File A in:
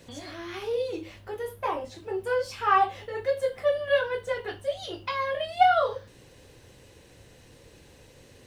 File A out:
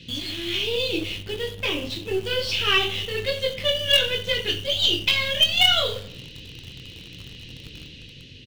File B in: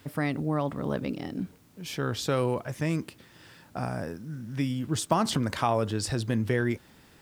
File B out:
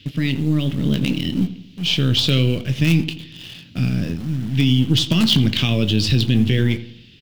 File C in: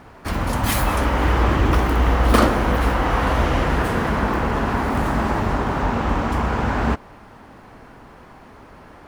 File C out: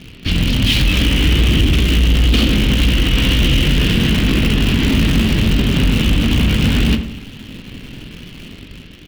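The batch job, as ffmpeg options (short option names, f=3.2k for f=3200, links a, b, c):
-filter_complex "[0:a]firequalizer=gain_entry='entry(100,0);entry(180,2);entry(800,-26);entry(2900,11);entry(8300,-19)':delay=0.05:min_phase=1,dynaudnorm=f=120:g=11:m=3.5dB,asplit=2[a][b];[b]acrusher=bits=4:dc=4:mix=0:aa=0.000001,volume=-7dB[c];[a][c]amix=inputs=2:normalize=0,flanger=delay=6.2:depth=1:regen=-80:speed=2:shape=sinusoidal,aeval=exprs='0.668*(cos(1*acos(clip(val(0)/0.668,-1,1)))-cos(1*PI/2))+0.0944*(cos(5*acos(clip(val(0)/0.668,-1,1)))-cos(5*PI/2))':c=same,asplit=2[d][e];[e]adelay=23,volume=-13.5dB[f];[d][f]amix=inputs=2:normalize=0,asplit=2[g][h];[h]adelay=85,lowpass=f=1.9k:p=1,volume=-14dB,asplit=2[i][j];[j]adelay=85,lowpass=f=1.9k:p=1,volume=0.49,asplit=2[k][l];[l]adelay=85,lowpass=f=1.9k:p=1,volume=0.49,asplit=2[m][n];[n]adelay=85,lowpass=f=1.9k:p=1,volume=0.49,asplit=2[o][p];[p]adelay=85,lowpass=f=1.9k:p=1,volume=0.49[q];[i][k][m][o][q]amix=inputs=5:normalize=0[r];[g][r]amix=inputs=2:normalize=0,alimiter=level_in=13dB:limit=-1dB:release=50:level=0:latency=1,volume=-5.5dB"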